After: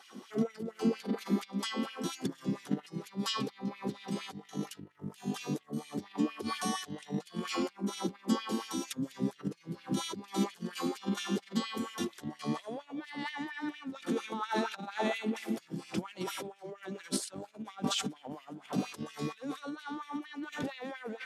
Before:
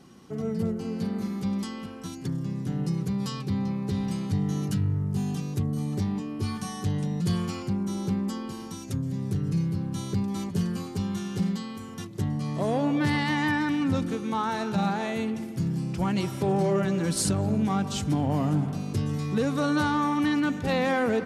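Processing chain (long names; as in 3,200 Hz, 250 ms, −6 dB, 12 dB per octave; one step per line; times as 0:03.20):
parametric band 3,400 Hz +5.5 dB 0.22 octaves
compressor whose output falls as the input rises −31 dBFS, ratio −0.5
auto-filter high-pass sine 4.3 Hz 220–2,600 Hz
level −3 dB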